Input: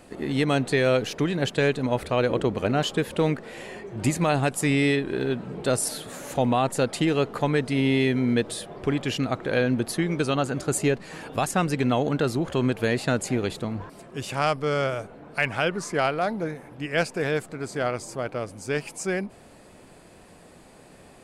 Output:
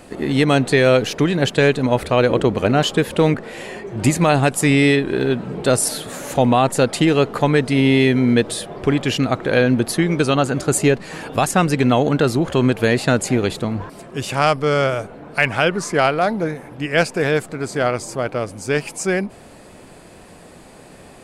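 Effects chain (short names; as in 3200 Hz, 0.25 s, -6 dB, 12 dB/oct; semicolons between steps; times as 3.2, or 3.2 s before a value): 3.34–3.87 three-band expander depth 40%; gain +7.5 dB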